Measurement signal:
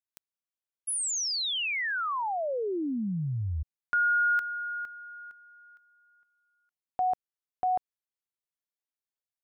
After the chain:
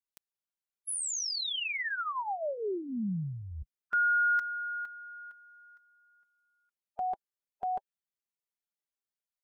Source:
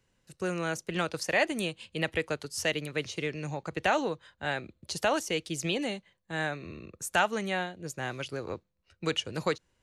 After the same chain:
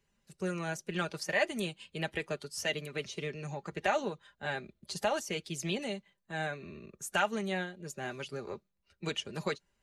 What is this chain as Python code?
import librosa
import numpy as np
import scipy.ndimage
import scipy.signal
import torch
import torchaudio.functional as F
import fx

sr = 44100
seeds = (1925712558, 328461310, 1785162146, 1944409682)

y = fx.spec_quant(x, sr, step_db=15)
y = y + 0.54 * np.pad(y, (int(5.0 * sr / 1000.0), 0))[:len(y)]
y = y * 10.0 ** (-4.5 / 20.0)